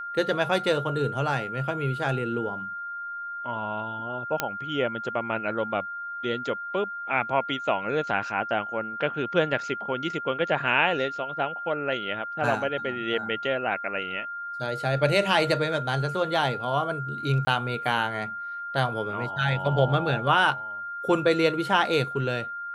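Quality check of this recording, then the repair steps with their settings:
whine 1.4 kHz -32 dBFS
4.40 s: pop -8 dBFS
17.45–17.47 s: dropout 20 ms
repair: de-click; band-stop 1.4 kHz, Q 30; interpolate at 17.45 s, 20 ms

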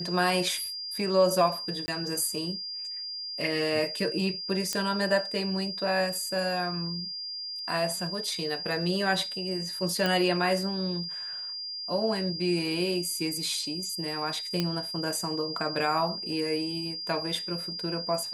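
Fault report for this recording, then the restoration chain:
whine 4.8 kHz -34 dBFS
1.86–1.88 s: dropout 20 ms
4.73 s: pop -13 dBFS
10.06 s: pop
14.60 s: pop -13 dBFS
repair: de-click; band-stop 4.8 kHz, Q 30; interpolate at 1.86 s, 20 ms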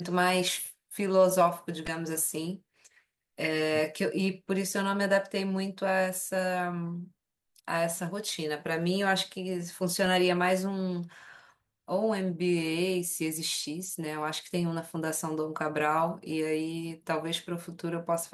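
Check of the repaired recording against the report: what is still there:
nothing left

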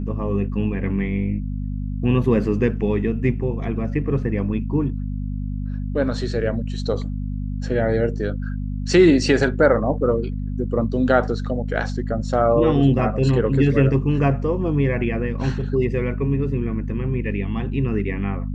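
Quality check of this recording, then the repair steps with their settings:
hum 50 Hz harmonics 5 -26 dBFS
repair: de-hum 50 Hz, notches 5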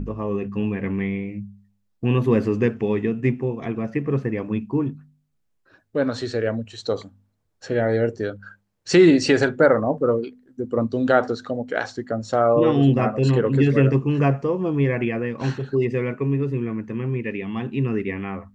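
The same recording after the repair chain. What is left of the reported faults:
nothing left

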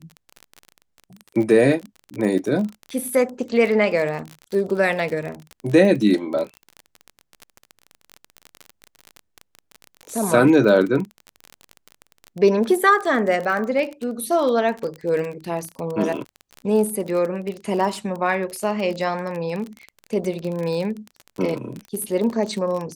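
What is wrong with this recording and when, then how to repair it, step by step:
crackle 31 per s -26 dBFS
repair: de-click

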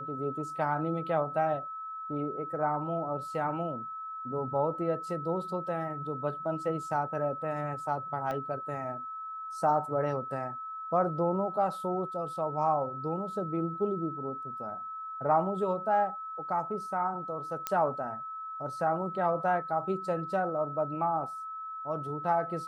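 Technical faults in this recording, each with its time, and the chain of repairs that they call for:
whine 1.3 kHz -37 dBFS
8.31 s: pop -23 dBFS
17.67 s: pop -14 dBFS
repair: de-click; band-stop 1.3 kHz, Q 30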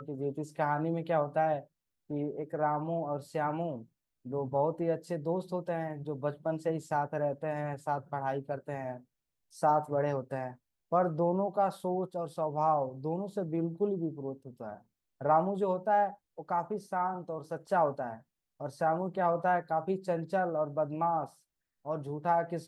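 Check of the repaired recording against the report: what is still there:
8.31 s: pop

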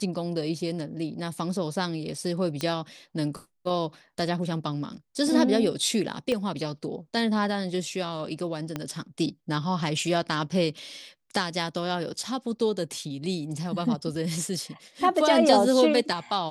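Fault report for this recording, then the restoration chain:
2.61 s: pop -14 dBFS
6.32 s: pop -16 dBFS
8.76 s: pop -16 dBFS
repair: de-click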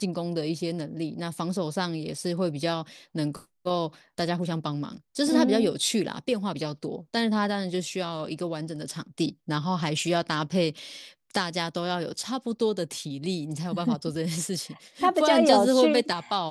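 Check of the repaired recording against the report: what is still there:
6.32 s: pop
8.76 s: pop

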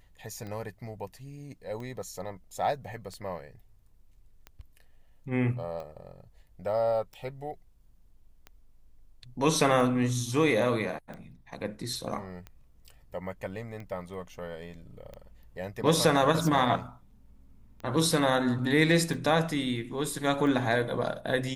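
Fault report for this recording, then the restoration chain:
tick 45 rpm -29 dBFS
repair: de-click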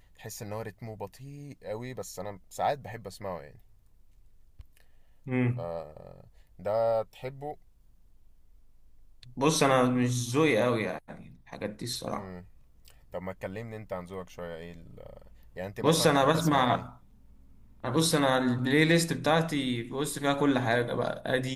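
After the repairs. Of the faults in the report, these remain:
nothing left

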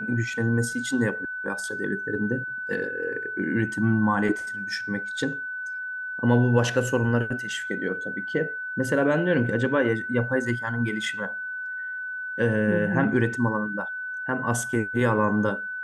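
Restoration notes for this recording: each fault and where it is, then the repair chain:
whine 1.5 kHz -30 dBFS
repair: band-stop 1.5 kHz, Q 30

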